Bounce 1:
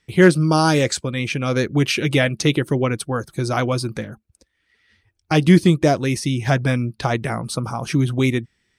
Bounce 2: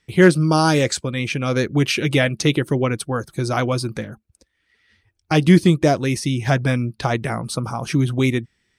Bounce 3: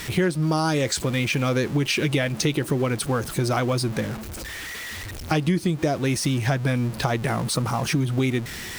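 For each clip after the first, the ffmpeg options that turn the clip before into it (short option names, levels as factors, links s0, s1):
-af anull
-af "aeval=exprs='val(0)+0.5*0.0376*sgn(val(0))':c=same,acompressor=threshold=0.112:ratio=6"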